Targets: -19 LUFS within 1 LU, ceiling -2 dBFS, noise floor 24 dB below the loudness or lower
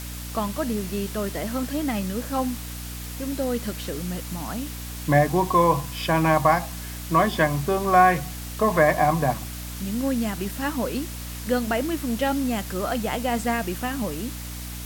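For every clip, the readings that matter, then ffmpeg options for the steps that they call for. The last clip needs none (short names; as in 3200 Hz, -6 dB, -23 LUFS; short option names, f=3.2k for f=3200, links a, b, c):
hum 60 Hz; harmonics up to 300 Hz; hum level -33 dBFS; noise floor -35 dBFS; noise floor target -49 dBFS; loudness -24.5 LUFS; peak -4.5 dBFS; loudness target -19.0 LUFS
-> -af "bandreject=f=60:t=h:w=6,bandreject=f=120:t=h:w=6,bandreject=f=180:t=h:w=6,bandreject=f=240:t=h:w=6,bandreject=f=300:t=h:w=6"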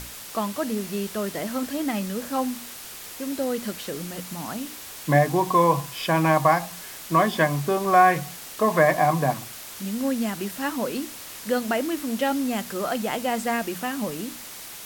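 hum none; noise floor -40 dBFS; noise floor target -49 dBFS
-> -af "afftdn=nr=9:nf=-40"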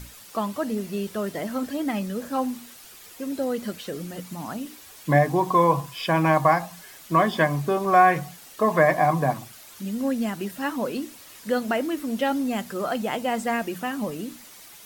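noise floor -47 dBFS; noise floor target -49 dBFS
-> -af "afftdn=nr=6:nf=-47"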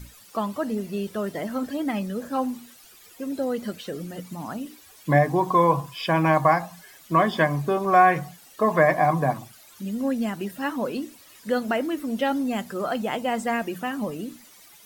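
noise floor -51 dBFS; loudness -24.5 LUFS; peak -4.5 dBFS; loudness target -19.0 LUFS
-> -af "volume=5.5dB,alimiter=limit=-2dB:level=0:latency=1"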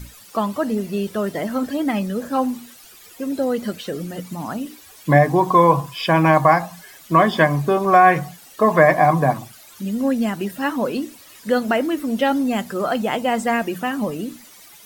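loudness -19.5 LUFS; peak -2.0 dBFS; noise floor -45 dBFS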